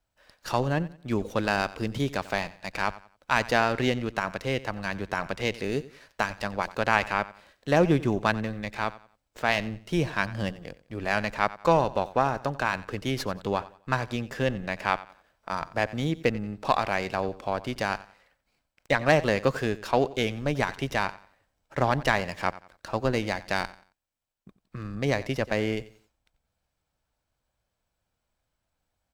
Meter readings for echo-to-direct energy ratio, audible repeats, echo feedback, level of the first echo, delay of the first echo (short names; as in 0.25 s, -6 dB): -17.5 dB, 2, 31%, -18.0 dB, 90 ms